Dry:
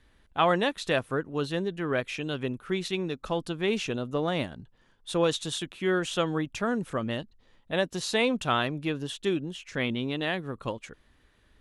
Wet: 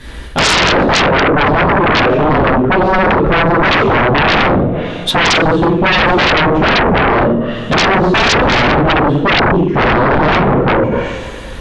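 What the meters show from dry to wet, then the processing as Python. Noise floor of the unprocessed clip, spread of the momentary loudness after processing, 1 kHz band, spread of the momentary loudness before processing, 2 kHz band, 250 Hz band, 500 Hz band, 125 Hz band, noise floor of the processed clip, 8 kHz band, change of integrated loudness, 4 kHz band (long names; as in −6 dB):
−64 dBFS, 4 LU, +22.0 dB, 10 LU, +21.5 dB, +17.0 dB, +16.5 dB, +19.5 dB, −26 dBFS, +14.5 dB, +18.5 dB, +18.0 dB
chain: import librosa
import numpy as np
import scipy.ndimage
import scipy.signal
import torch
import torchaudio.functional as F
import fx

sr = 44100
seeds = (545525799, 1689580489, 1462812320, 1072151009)

y = fx.rev_double_slope(x, sr, seeds[0], early_s=0.63, late_s=2.2, knee_db=-18, drr_db=-7.5)
y = fx.env_lowpass_down(y, sr, base_hz=630.0, full_db=-26.5)
y = fx.fold_sine(y, sr, drive_db=14, ceiling_db=-14.5)
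y = F.gain(torch.from_numpy(y), 7.0).numpy()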